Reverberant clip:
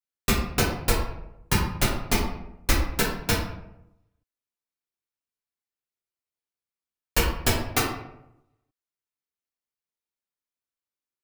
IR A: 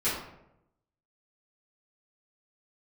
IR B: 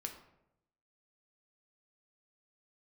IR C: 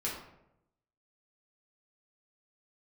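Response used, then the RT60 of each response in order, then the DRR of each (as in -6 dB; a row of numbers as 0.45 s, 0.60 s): C; 0.85 s, 0.85 s, 0.85 s; -13.5 dB, 3.5 dB, -6.0 dB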